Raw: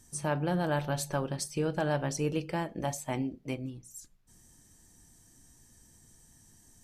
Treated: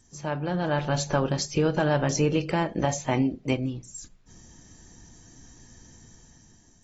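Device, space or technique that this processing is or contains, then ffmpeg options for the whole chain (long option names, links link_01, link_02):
low-bitrate web radio: -af "dynaudnorm=framelen=260:gausssize=7:maxgain=9.5dB,alimiter=limit=-13.5dB:level=0:latency=1:release=104" -ar 32000 -c:a aac -b:a 24k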